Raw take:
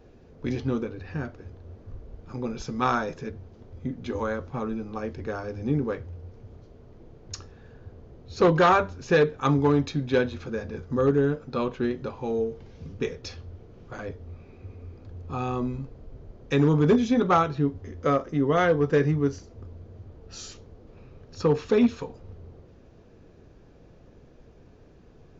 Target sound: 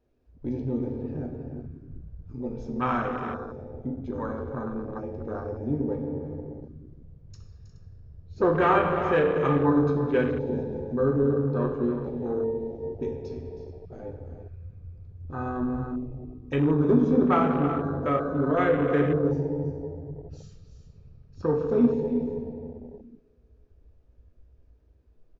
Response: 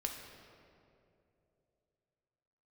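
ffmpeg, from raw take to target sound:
-filter_complex "[0:a]aecho=1:1:319|356|421:0.237|0.188|0.126[s0];[1:a]atrim=start_sample=2205[s1];[s0][s1]afir=irnorm=-1:irlink=0,afwtdn=0.0251,volume=0.794"

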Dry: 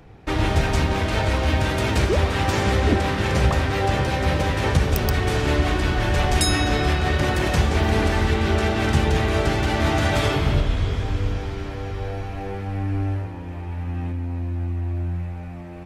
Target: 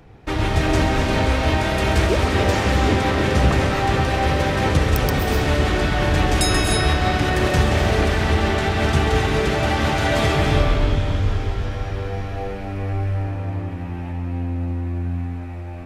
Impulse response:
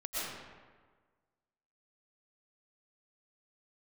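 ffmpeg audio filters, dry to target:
-filter_complex "[0:a]asplit=2[s0][s1];[1:a]atrim=start_sample=2205,adelay=134[s2];[s1][s2]afir=irnorm=-1:irlink=0,volume=0.562[s3];[s0][s3]amix=inputs=2:normalize=0"

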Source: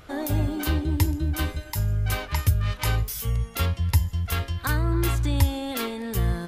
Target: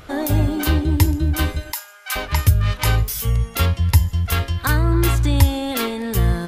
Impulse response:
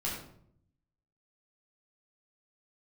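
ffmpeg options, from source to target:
-filter_complex "[0:a]asettb=1/sr,asplit=3[s0][s1][s2];[s0]atrim=end=1.724[s3];[s1]atrim=start=1.72:end=2.16,asetpts=PTS-STARTPTS,afade=t=in:d=0.004:c=qsin,afade=t=out:st=0.436:d=0.004:c=qsin,highpass=f=900:w=0.5412,highpass=f=900:w=1.3066[s4];[s2]atrim=start=2.156[s5];[s3][s4]acrossfade=d=0.004:c1=hsin:c2=qsin[s6];[s6][s5]acrossfade=d=0.004:c1=qsin:c2=hsin,volume=2.11"

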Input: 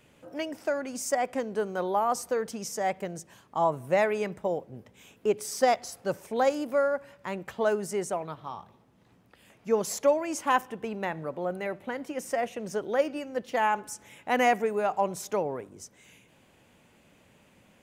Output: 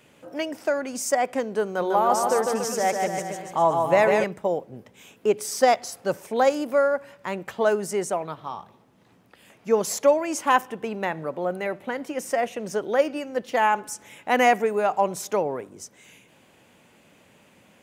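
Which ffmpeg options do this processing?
-filter_complex "[0:a]highpass=f=150:p=1,asettb=1/sr,asplit=3[s0][s1][s2];[s0]atrim=end=1.664[s3];[s1]atrim=start=1.66:end=4.24,asetpts=PTS-STARTPTS,afade=t=in:d=0.004:c=qsin,afade=t=out:st=2.576:d=0.004:c=qsin,aecho=1:1:150|285|406.5|515.8|614.3:0.631|0.398|0.251|0.158|0.1,atrim=end_sample=113778[s4];[s2]atrim=start=4.236[s5];[s3][s4]acrossfade=d=0.004:c1=hsin:c2=qsin[s6];[s6][s5]acrossfade=d=0.004:c1=qsin:c2=hsin,volume=1.78"

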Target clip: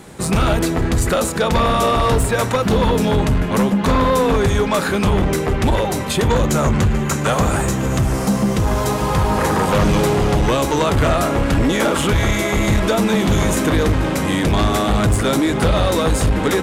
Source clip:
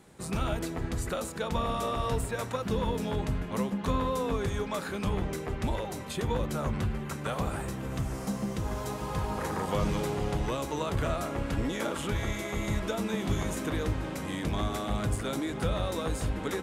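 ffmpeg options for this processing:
-filter_complex "[0:a]asettb=1/sr,asplit=3[s0][s1][s2];[s0]atrim=end=6.294[s3];[s1]atrim=start=6.29:end=7.98,asetpts=PTS-STARTPTS,afade=t=in:d=0.004:c=qsin,afade=t=out:st=1.686:d=0.004:c=qsin,equalizer=f=6800:t=o:w=0.29:g=9.5[s4];[s2]atrim=start=7.976[s5];[s3][s4]acrossfade=d=0.004:c1=hsin:c2=qsin[s6];[s6][s5]acrossfade=d=0.004:c1=qsin:c2=hsin,aeval=exprs='0.15*sin(PI/2*2.24*val(0)/0.15)':c=same,volume=2"

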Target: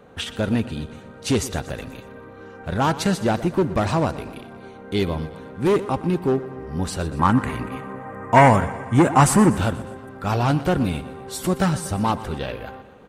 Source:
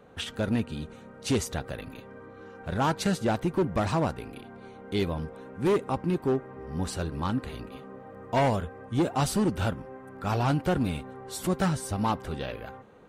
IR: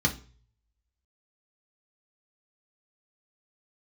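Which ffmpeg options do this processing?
-filter_complex "[0:a]asettb=1/sr,asplit=3[s0][s1][s2];[s0]atrim=end=7.194[s3];[s1]atrim=start=7.19:end=9.57,asetpts=PTS-STARTPTS,afade=t=in:d=0.004:c=qsin,afade=t=out:st=2.376:d=0.004:c=qsin,equalizer=f=125:t=o:w=1:g=5,equalizer=f=250:t=o:w=1:g=4,equalizer=f=1000:t=o:w=1:g=8,equalizer=f=2000:t=o:w=1:g=10,equalizer=f=4000:t=o:w=1:g=-9,equalizer=f=8000:t=o:w=1:g=9[s4];[s2]atrim=start=9.566[s5];[s3][s4]acrossfade=d=0.004:c1=hsin:c2=qsin[s6];[s6][s5]acrossfade=d=0.004:c1=qsin:c2=hsin,aecho=1:1:121|242|363|484|605:0.158|0.0872|0.0479|0.0264|0.0145,volume=1.88"

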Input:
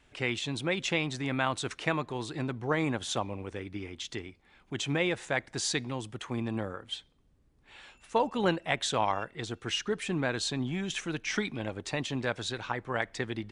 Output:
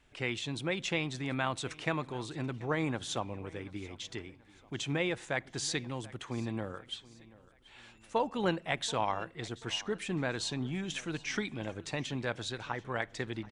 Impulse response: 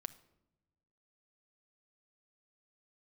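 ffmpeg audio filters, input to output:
-filter_complex "[0:a]aecho=1:1:733|1466|2199:0.0891|0.0383|0.0165,asplit=2[s0][s1];[1:a]atrim=start_sample=2205,lowshelf=f=150:g=8[s2];[s1][s2]afir=irnorm=-1:irlink=0,volume=0.376[s3];[s0][s3]amix=inputs=2:normalize=0,volume=0.531"

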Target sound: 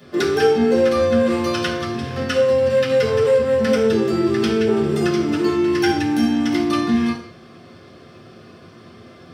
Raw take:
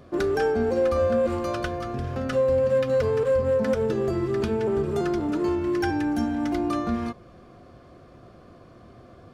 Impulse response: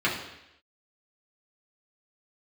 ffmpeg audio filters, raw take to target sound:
-filter_complex "[1:a]atrim=start_sample=2205,afade=t=out:st=0.31:d=0.01,atrim=end_sample=14112,asetrate=52920,aresample=44100[s0];[0:a][s0]afir=irnorm=-1:irlink=0,crystalizer=i=5:c=0,volume=0.473"

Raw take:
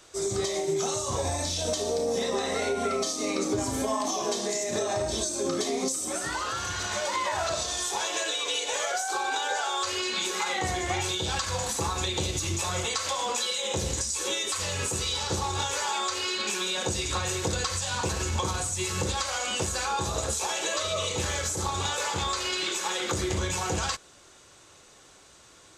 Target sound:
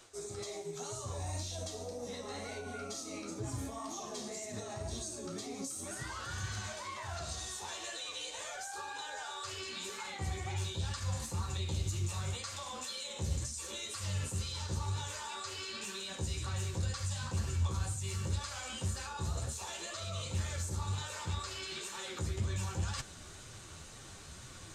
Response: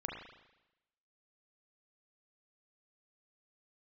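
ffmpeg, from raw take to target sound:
-af "asetrate=45938,aresample=44100,areverse,acompressor=threshold=0.00794:ratio=8,areverse,flanger=delay=7.3:depth=6.6:regen=35:speed=2:shape=triangular,asubboost=boost=4:cutoff=200,volume=2"

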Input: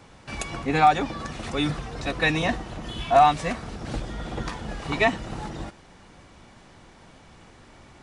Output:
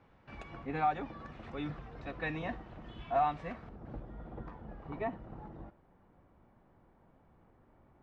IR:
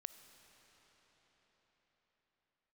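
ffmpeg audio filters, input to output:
-filter_complex "[0:a]asetnsamples=n=441:p=0,asendcmd='3.69 lowpass f 1100',lowpass=2200[s0];[1:a]atrim=start_sample=2205,atrim=end_sample=3087[s1];[s0][s1]afir=irnorm=-1:irlink=0,volume=0.422"

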